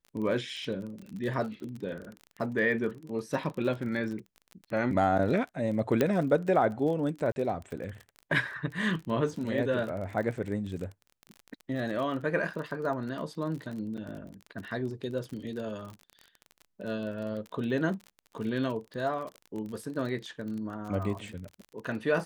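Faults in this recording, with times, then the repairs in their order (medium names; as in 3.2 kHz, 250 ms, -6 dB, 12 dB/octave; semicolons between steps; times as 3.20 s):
crackle 33 per s -36 dBFS
6.01 s: pop -12 dBFS
7.32–7.36 s: dropout 41 ms
13.97–13.98 s: dropout 6.9 ms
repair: de-click; interpolate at 7.32 s, 41 ms; interpolate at 13.97 s, 6.9 ms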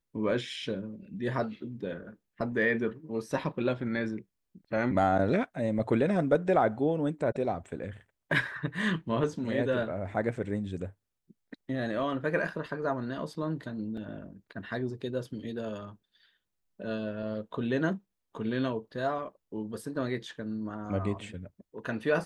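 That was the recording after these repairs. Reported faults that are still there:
7.32–7.36 s: dropout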